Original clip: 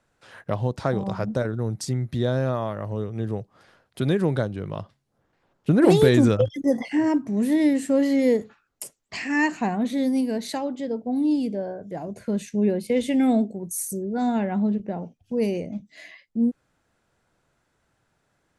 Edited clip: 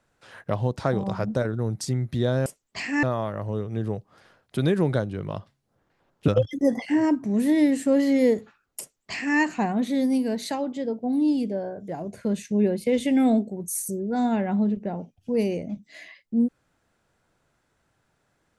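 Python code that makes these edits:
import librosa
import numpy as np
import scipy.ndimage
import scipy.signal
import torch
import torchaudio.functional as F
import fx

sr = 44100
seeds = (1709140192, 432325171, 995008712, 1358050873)

y = fx.edit(x, sr, fx.cut(start_s=5.71, length_s=0.6),
    fx.duplicate(start_s=8.83, length_s=0.57, to_s=2.46), tone=tone)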